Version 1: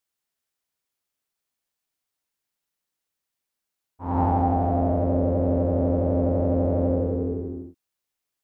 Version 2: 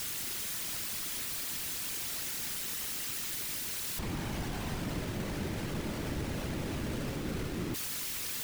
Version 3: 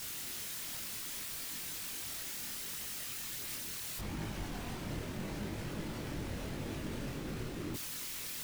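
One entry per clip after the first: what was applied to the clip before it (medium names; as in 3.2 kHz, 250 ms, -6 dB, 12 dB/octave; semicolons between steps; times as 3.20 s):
one-bit comparator; FFT filter 230 Hz 0 dB, 680 Hz -10 dB, 1.3 kHz -6 dB, 2.1 kHz -3 dB; whisper effect; trim -7 dB
chorus voices 2, 0.71 Hz, delay 23 ms, depth 4.5 ms; trim -1.5 dB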